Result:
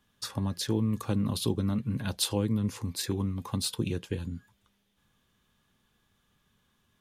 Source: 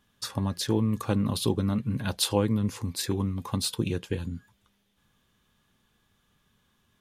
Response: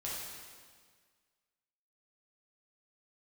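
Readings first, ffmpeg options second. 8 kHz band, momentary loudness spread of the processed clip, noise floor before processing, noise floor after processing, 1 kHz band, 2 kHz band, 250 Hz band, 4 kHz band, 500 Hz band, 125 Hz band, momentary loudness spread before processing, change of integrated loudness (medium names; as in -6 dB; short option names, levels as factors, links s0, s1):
-2.0 dB, 7 LU, -71 dBFS, -73 dBFS, -5.5 dB, -3.5 dB, -2.5 dB, -2.5 dB, -4.5 dB, -2.0 dB, 8 LU, -2.5 dB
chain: -filter_complex "[0:a]acrossover=split=400|3000[s0][s1][s2];[s1]acompressor=threshold=0.0126:ratio=2[s3];[s0][s3][s2]amix=inputs=3:normalize=0,volume=0.794"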